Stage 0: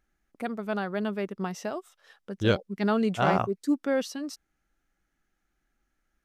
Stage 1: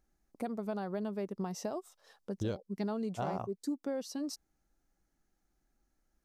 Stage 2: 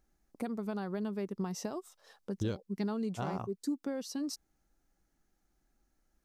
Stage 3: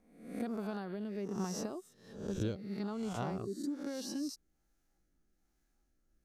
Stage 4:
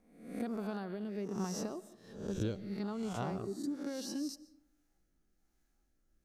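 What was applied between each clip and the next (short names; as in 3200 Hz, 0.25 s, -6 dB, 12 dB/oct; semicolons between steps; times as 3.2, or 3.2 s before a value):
band shelf 2100 Hz -8.5 dB; compressor 6:1, threshold -33 dBFS, peak gain reduction 14 dB
dynamic EQ 640 Hz, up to -7 dB, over -52 dBFS, Q 1.9; gain +2 dB
spectral swells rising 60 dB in 0.71 s; rotary speaker horn 1.2 Hz; gain -2 dB
reverb RT60 0.80 s, pre-delay 90 ms, DRR 18 dB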